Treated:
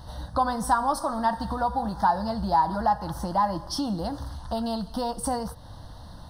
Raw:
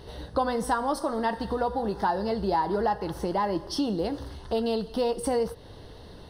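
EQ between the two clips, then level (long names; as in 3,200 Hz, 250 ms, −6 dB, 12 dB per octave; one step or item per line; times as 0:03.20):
phaser with its sweep stopped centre 1,000 Hz, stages 4
+5.0 dB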